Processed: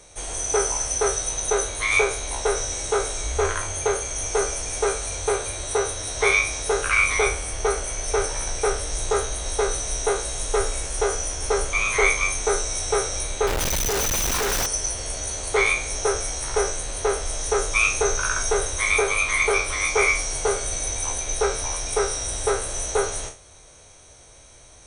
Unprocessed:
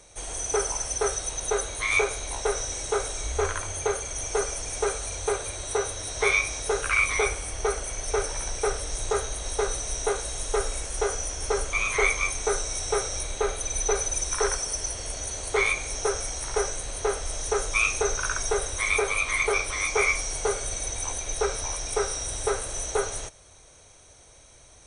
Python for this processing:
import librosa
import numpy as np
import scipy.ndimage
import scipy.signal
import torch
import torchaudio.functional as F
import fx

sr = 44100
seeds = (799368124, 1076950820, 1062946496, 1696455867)

y = fx.spec_trails(x, sr, decay_s=0.33)
y = fx.schmitt(y, sr, flips_db=-32.5, at=(13.47, 14.66))
y = y * 10.0 ** (2.5 / 20.0)